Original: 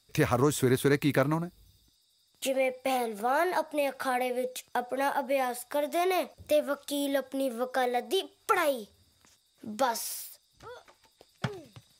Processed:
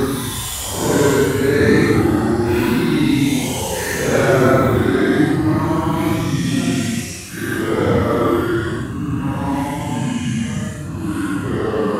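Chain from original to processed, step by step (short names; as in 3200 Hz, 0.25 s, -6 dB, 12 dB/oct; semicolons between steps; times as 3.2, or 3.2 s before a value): echoes that change speed 0.218 s, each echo -2 st, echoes 3; Paulstretch 10×, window 0.05 s, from 0.76; gain +7.5 dB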